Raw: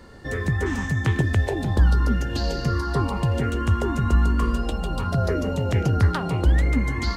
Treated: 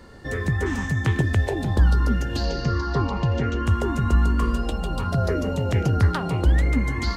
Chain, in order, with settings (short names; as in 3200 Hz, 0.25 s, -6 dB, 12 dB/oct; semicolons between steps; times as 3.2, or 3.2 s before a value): 2.45–3.66 steep low-pass 6700 Hz 48 dB/oct